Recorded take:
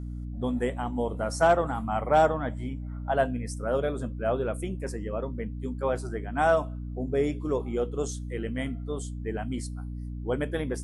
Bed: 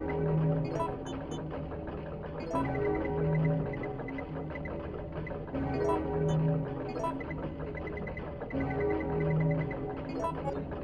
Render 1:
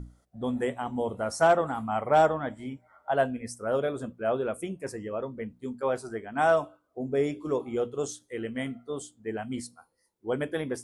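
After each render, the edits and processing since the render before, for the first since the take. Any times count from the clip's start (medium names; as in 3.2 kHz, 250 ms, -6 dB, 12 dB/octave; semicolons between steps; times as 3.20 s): hum notches 60/120/180/240/300 Hz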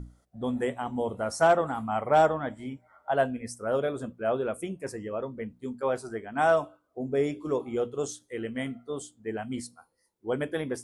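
no audible change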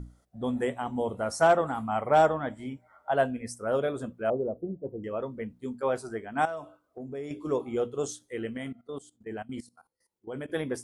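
4.30–5.04 s: inverse Chebyshev band-stop 2–9.8 kHz, stop band 60 dB; 6.45–7.31 s: compression 2.5:1, threshold -39 dBFS; 8.57–10.50 s: level held to a coarse grid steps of 18 dB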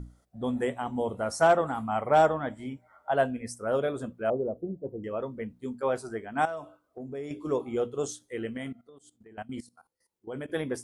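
8.81–9.38 s: compression 8:1, threshold -49 dBFS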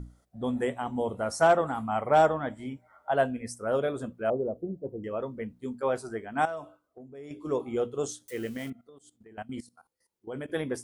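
6.62–7.60 s: dip -9.5 dB, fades 0.47 s; 8.28–8.70 s: zero-crossing glitches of -39 dBFS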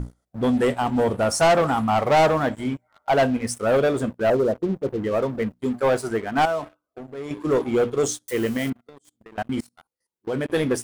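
waveshaping leveller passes 3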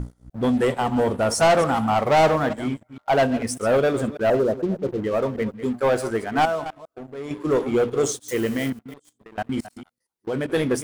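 chunks repeated in reverse 149 ms, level -13 dB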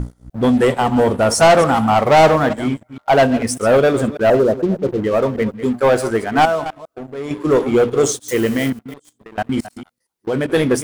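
trim +6.5 dB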